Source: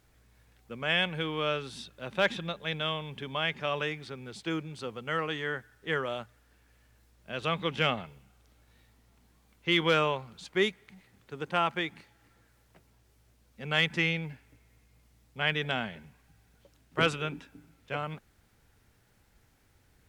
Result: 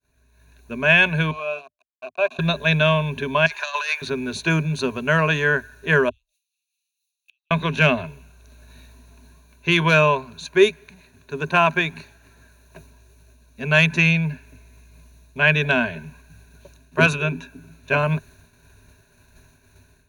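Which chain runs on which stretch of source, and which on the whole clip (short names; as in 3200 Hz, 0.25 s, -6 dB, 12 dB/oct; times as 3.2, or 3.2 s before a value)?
1.31–2.39 sample gate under -34 dBFS + vowel filter a
3.46–4.02 self-modulated delay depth 0.087 ms + HPF 790 Hz 24 dB/oct + negative-ratio compressor -38 dBFS, ratio -0.5
6.09–7.51 steep high-pass 2700 Hz 48 dB/oct + flipped gate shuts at -44 dBFS, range -34 dB
whole clip: expander -60 dBFS; ripple EQ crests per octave 1.5, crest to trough 15 dB; AGC gain up to 15 dB; gain -2 dB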